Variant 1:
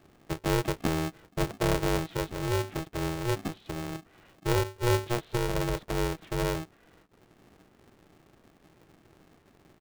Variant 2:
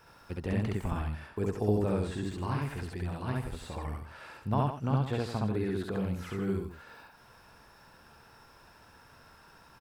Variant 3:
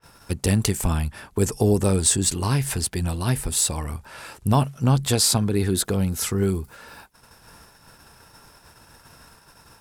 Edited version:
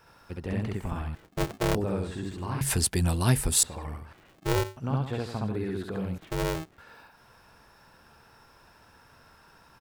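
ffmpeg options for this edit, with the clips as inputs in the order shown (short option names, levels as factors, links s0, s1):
-filter_complex "[0:a]asplit=3[s0][s1][s2];[1:a]asplit=5[s3][s4][s5][s6][s7];[s3]atrim=end=1.152[s8];[s0]atrim=start=1.148:end=1.752[s9];[s4]atrim=start=1.748:end=2.612[s10];[2:a]atrim=start=2.608:end=3.632[s11];[s5]atrim=start=3.628:end=4.132[s12];[s1]atrim=start=4.128:end=4.772[s13];[s6]atrim=start=4.768:end=6.182[s14];[s2]atrim=start=6.178:end=6.782[s15];[s7]atrim=start=6.778[s16];[s8][s9]acrossfade=d=0.004:c1=hsin:c2=hsin[s17];[s17][s10]acrossfade=d=0.004:c1=hsin:c2=hsin[s18];[s18][s11]acrossfade=d=0.004:c1=hsin:c2=hsin[s19];[s19][s12]acrossfade=d=0.004:c1=hsin:c2=hsin[s20];[s20][s13]acrossfade=d=0.004:c1=hsin:c2=hsin[s21];[s21][s14]acrossfade=d=0.004:c1=hsin:c2=hsin[s22];[s22][s15]acrossfade=d=0.004:c1=hsin:c2=hsin[s23];[s23][s16]acrossfade=d=0.004:c1=hsin:c2=hsin"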